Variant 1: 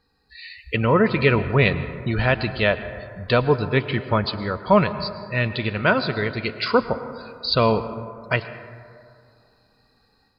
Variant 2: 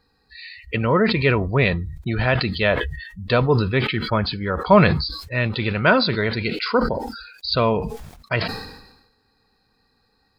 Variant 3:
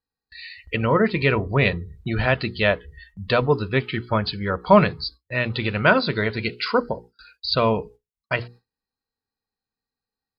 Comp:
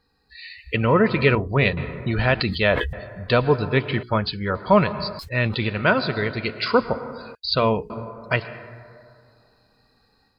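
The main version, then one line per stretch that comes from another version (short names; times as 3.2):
1
1.35–1.77 from 3
2.4–2.93 from 2
4.03–4.55 from 3
5.19–5.65 from 2
7.35–7.9 from 3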